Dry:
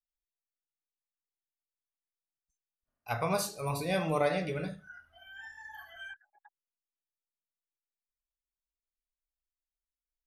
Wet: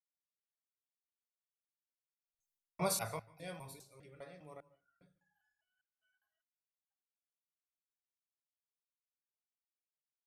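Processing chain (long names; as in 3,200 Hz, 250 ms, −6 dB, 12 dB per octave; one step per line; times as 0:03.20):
slices reordered back to front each 193 ms, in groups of 3
source passing by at 0:02.52, 15 m/s, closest 1 metre
high-shelf EQ 6,600 Hz +10 dB
on a send at −19 dB: convolution reverb RT60 0.35 s, pre-delay 138 ms
on the sum: multiband upward and downward expander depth 40%
level +6 dB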